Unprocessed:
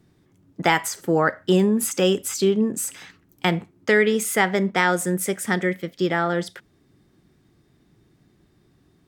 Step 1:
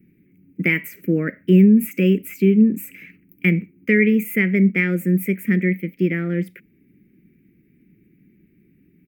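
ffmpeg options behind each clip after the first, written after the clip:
ffmpeg -i in.wav -af "firequalizer=gain_entry='entry(120,0);entry(190,13);entry(520,-3);entry(810,-28);entry(1200,-15);entry(2300,13);entry(3500,-18);entry(6000,-17);entry(9300,-12);entry(15000,14)':delay=0.05:min_phase=1,volume=-3.5dB" out.wav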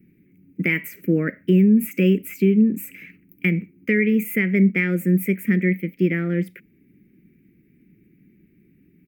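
ffmpeg -i in.wav -af "alimiter=limit=-8.5dB:level=0:latency=1:release=209" out.wav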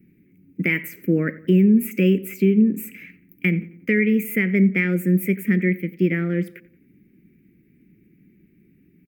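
ffmpeg -i in.wav -filter_complex "[0:a]asplit=2[link_01][link_02];[link_02]adelay=89,lowpass=frequency=2600:poles=1,volume=-18.5dB,asplit=2[link_03][link_04];[link_04]adelay=89,lowpass=frequency=2600:poles=1,volume=0.47,asplit=2[link_05][link_06];[link_06]adelay=89,lowpass=frequency=2600:poles=1,volume=0.47,asplit=2[link_07][link_08];[link_08]adelay=89,lowpass=frequency=2600:poles=1,volume=0.47[link_09];[link_01][link_03][link_05][link_07][link_09]amix=inputs=5:normalize=0" out.wav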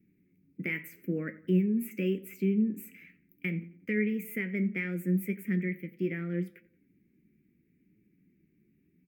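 ffmpeg -i in.wav -af "flanger=delay=9.3:depth=4.9:regen=62:speed=0.75:shape=triangular,volume=-8dB" out.wav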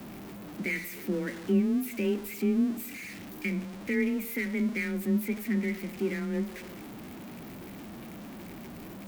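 ffmpeg -i in.wav -af "aeval=exprs='val(0)+0.5*0.0133*sgn(val(0))':channel_layout=same,afreqshift=20" out.wav

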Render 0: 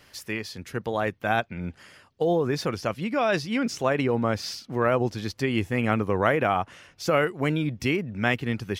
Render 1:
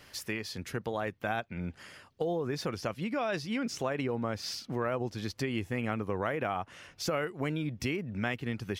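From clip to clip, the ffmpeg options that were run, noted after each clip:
ffmpeg -i in.wav -af "acompressor=threshold=-33dB:ratio=2.5" out.wav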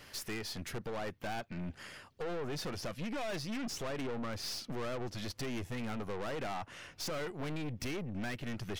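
ffmpeg -i in.wav -af "aeval=exprs='(tanh(89.1*val(0)+0.5)-tanh(0.5))/89.1':channel_layout=same,volume=3dB" out.wav

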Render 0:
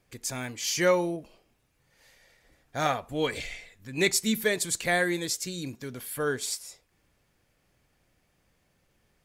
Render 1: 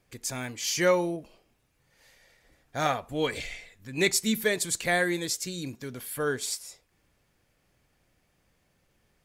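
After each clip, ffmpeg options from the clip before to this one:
ffmpeg -i in.wav -af anull out.wav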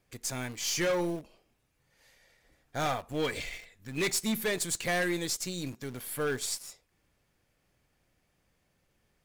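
ffmpeg -i in.wav -filter_complex "[0:a]asplit=2[link_01][link_02];[link_02]acrusher=bits=4:dc=4:mix=0:aa=0.000001,volume=-5.5dB[link_03];[link_01][link_03]amix=inputs=2:normalize=0,asoftclip=type=hard:threshold=-21.5dB,volume=-3.5dB" out.wav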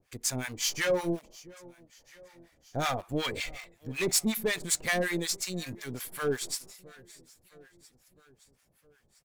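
ffmpeg -i in.wav -filter_complex "[0:a]aecho=1:1:661|1322|1983|2644:0.075|0.045|0.027|0.0162,acrossover=split=800[link_01][link_02];[link_01]aeval=exprs='val(0)*(1-1/2+1/2*cos(2*PI*5.4*n/s))':channel_layout=same[link_03];[link_02]aeval=exprs='val(0)*(1-1/2-1/2*cos(2*PI*5.4*n/s))':channel_layout=same[link_04];[link_03][link_04]amix=inputs=2:normalize=0,volume=5.5dB" out.wav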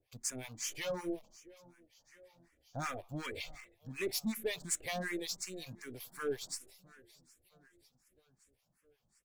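ffmpeg -i in.wav -filter_complex "[0:a]asplit=2[link_01][link_02];[link_02]afreqshift=2.7[link_03];[link_01][link_03]amix=inputs=2:normalize=1,volume=-6dB" out.wav

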